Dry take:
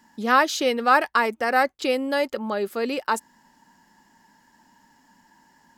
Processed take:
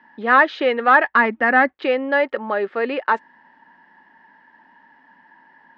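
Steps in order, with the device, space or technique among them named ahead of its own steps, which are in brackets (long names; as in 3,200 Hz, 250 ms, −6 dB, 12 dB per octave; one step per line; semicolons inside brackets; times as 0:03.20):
0:01.15–0:01.74: low shelf with overshoot 330 Hz +8 dB, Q 1.5
overdrive pedal into a guitar cabinet (mid-hump overdrive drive 11 dB, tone 1,200 Hz, clips at −4 dBFS; loudspeaker in its box 75–3,500 Hz, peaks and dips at 120 Hz −10 dB, 210 Hz −3 dB, 1,800 Hz +8 dB)
level +2.5 dB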